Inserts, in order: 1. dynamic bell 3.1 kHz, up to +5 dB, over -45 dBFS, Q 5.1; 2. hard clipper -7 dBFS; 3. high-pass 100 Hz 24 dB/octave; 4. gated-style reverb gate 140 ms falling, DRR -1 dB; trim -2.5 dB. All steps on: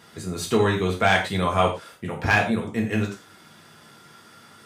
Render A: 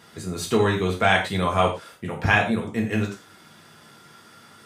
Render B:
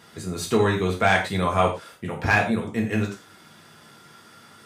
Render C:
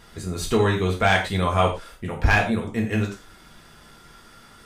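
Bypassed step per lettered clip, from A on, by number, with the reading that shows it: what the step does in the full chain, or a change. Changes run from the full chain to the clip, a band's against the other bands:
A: 2, distortion -17 dB; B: 1, 4 kHz band -2.5 dB; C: 3, 125 Hz band +3.0 dB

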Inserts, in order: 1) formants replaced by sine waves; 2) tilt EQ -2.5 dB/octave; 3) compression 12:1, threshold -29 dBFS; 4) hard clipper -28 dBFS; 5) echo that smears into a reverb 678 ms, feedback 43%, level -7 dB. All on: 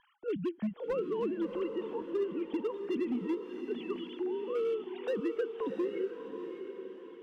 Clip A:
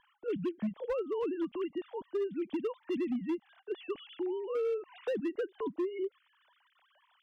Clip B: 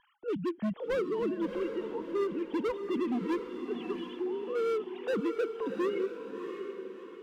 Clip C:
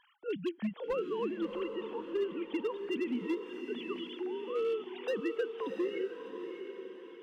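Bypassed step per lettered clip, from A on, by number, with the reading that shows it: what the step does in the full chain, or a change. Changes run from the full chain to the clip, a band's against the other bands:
5, echo-to-direct -6.0 dB to none; 3, mean gain reduction 3.0 dB; 2, 4 kHz band +6.0 dB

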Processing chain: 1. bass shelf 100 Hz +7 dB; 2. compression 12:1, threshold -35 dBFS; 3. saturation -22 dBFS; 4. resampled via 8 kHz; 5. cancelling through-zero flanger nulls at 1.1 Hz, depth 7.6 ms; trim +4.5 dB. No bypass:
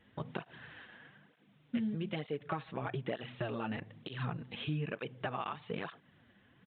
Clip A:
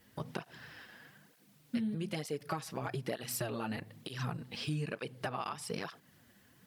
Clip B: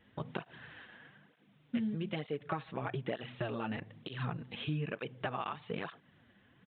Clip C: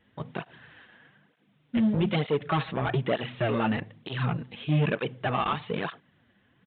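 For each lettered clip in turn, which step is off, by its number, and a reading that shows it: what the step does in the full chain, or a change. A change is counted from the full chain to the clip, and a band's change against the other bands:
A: 4, 4 kHz band +2.5 dB; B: 3, distortion -29 dB; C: 2, crest factor change -5.5 dB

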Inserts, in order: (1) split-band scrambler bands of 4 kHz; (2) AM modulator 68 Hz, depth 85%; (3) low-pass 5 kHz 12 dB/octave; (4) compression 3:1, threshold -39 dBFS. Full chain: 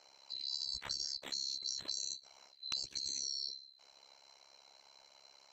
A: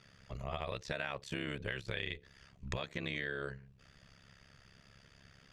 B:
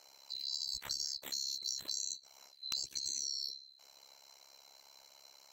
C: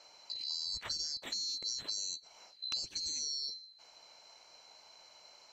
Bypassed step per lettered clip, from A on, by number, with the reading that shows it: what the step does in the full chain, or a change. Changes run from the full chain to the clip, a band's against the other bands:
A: 1, 8 kHz band -33.5 dB; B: 3, 8 kHz band +5.0 dB; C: 2, momentary loudness spread change +12 LU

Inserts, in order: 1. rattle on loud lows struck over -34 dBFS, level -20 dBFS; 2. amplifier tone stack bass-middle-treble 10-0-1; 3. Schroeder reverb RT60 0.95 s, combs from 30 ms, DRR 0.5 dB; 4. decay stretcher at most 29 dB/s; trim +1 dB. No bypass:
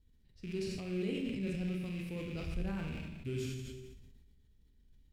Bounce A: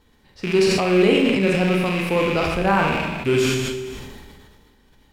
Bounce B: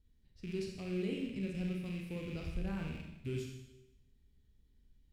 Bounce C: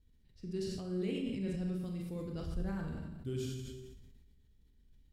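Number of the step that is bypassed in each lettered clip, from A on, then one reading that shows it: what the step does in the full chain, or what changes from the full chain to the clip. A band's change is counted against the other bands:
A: 2, 1 kHz band +9.5 dB; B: 4, 8 kHz band -3.0 dB; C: 1, 2 kHz band -6.0 dB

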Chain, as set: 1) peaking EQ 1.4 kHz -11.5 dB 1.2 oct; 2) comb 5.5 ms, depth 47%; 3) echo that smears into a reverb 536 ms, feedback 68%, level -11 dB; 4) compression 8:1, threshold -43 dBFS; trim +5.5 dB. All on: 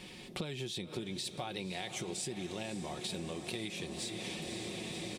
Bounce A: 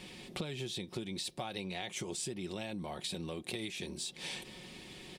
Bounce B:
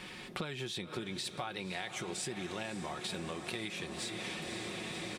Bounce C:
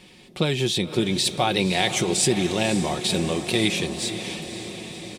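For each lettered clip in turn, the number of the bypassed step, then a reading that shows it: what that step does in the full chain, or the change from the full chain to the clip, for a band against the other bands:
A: 3, momentary loudness spread change +4 LU; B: 1, 2 kHz band +4.5 dB; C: 4, mean gain reduction 13.0 dB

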